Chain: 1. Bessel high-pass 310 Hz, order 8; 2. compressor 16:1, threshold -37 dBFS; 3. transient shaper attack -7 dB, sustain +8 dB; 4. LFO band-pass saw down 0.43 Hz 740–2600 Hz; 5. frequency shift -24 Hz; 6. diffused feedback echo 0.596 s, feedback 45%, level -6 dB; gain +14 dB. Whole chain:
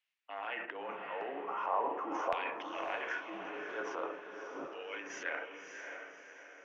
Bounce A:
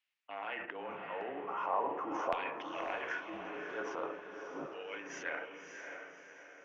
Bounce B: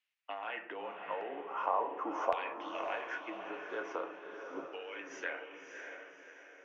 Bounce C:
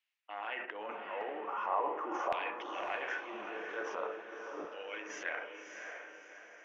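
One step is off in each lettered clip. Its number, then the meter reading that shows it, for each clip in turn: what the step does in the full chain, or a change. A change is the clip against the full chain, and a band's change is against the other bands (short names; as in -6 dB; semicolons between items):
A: 1, 250 Hz band +2.0 dB; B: 3, crest factor change +4.5 dB; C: 5, 250 Hz band -1.5 dB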